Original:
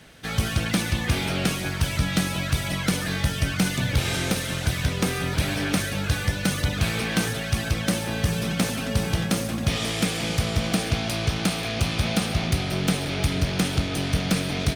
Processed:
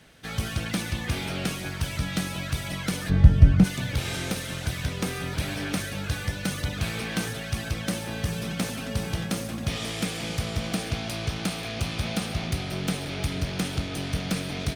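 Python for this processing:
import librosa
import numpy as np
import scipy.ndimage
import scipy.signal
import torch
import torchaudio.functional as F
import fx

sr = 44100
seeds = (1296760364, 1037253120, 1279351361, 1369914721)

y = fx.tilt_eq(x, sr, slope=-4.5, at=(3.09, 3.63), fade=0.02)
y = y * librosa.db_to_amplitude(-5.0)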